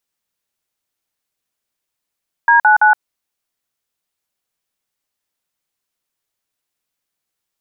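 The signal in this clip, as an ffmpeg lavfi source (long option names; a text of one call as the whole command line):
ffmpeg -f lavfi -i "aevalsrc='0.335*clip(min(mod(t,0.167),0.119-mod(t,0.167))/0.002,0,1)*(eq(floor(t/0.167),0)*(sin(2*PI*941*mod(t,0.167))+sin(2*PI*1633*mod(t,0.167)))+eq(floor(t/0.167),1)*(sin(2*PI*852*mod(t,0.167))+sin(2*PI*1477*mod(t,0.167)))+eq(floor(t/0.167),2)*(sin(2*PI*852*mod(t,0.167))+sin(2*PI*1477*mod(t,0.167))))':duration=0.501:sample_rate=44100" out.wav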